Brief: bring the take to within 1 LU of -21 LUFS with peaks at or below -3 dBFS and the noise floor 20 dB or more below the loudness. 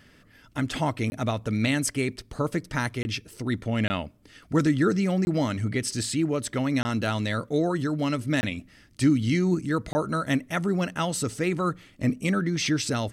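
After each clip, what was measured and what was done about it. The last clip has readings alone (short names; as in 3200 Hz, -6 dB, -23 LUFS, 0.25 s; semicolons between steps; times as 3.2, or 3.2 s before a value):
dropouts 7; longest dropout 20 ms; loudness -26.5 LUFS; peak -10.0 dBFS; loudness target -21.0 LUFS
-> interpolate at 1.1/3.03/3.88/5.25/6.83/8.41/9.93, 20 ms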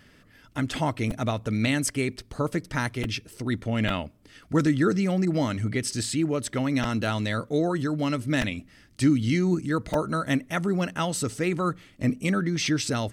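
dropouts 0; loudness -26.5 LUFS; peak -10.0 dBFS; loudness target -21.0 LUFS
-> gain +5.5 dB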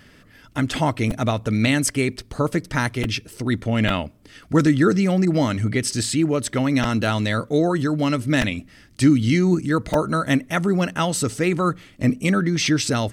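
loudness -21.0 LUFS; peak -4.5 dBFS; noise floor -51 dBFS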